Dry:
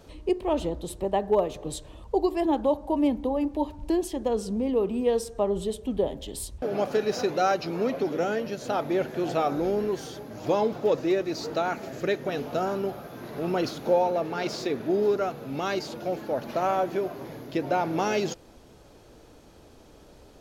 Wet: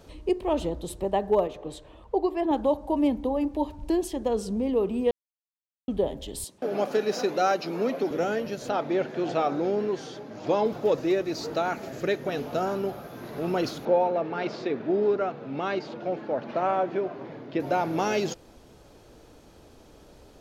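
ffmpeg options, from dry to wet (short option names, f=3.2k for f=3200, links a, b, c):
-filter_complex "[0:a]asettb=1/sr,asplit=3[a][b][c];[a]atrim=end=1.474[d];[b]atrim=start=1.47:end=2.51,asetpts=PTS-STARTPTS,afade=t=in:d=0.004:c=qsin,afade=t=out:st=1.036:d=0.004:c=qsin,bass=f=250:g=-7,treble=f=4k:g=-12[e];[c]atrim=start=2.506[f];[d][e]acrossfade=d=0.004:c1=hsin:c2=qsin[g];[g][f]acrossfade=d=0.004:c1=qsin:c2=hsin,asettb=1/sr,asplit=3[h][i][j];[h]atrim=end=6.444[k];[i]atrim=start=6.44:end=8.11,asetpts=PTS-STARTPTS,afade=t=in:d=0.004:c=qsin,afade=t=out:st=1.666:d=0.004:c=qsin,highpass=f=170:w=0.5412,highpass=f=170:w=1.3066[l];[j]atrim=start=8.106[m];[k][l]acrossfade=d=0.004:c1=hsin:c2=qsin[n];[n][m]acrossfade=d=0.004:c1=qsin:c2=hsin,asettb=1/sr,asplit=3[o][p][q];[o]atrim=end=8.694[r];[p]atrim=start=8.69:end=10.66,asetpts=PTS-STARTPTS,afade=t=in:d=0.004:c=qsin,afade=t=out:st=1.966:d=0.004:c=qsin,highpass=140,lowpass=5.7k[s];[q]atrim=start=10.656[t];[r][s]acrossfade=d=0.004:c1=hsin:c2=qsin[u];[u][t]acrossfade=d=0.004:c1=qsin:c2=hsin,asettb=1/sr,asplit=3[v][w][x];[v]atrim=end=13.854[y];[w]atrim=start=13.85:end=17.6,asetpts=PTS-STARTPTS,afade=t=in:d=0.004:c=qsin,afade=t=out:st=3.746:d=0.004:c=qsin,highpass=130,lowpass=3k[z];[x]atrim=start=17.596[aa];[y][z]acrossfade=d=0.004:c1=hsin:c2=qsin[ab];[ab][aa]acrossfade=d=0.004:c1=qsin:c2=hsin,asplit=3[ac][ad][ae];[ac]atrim=end=5.11,asetpts=PTS-STARTPTS,afade=t=out:st=5.106:d=0.004:c=hsin[af];[ad]atrim=start=5.11:end=5.88,asetpts=PTS-STARTPTS,volume=0[ag];[ae]atrim=start=5.88,asetpts=PTS-STARTPTS,afade=t=in:d=0.004:c=hsin[ah];[af][ag][ah]concat=n=3:v=0:a=1"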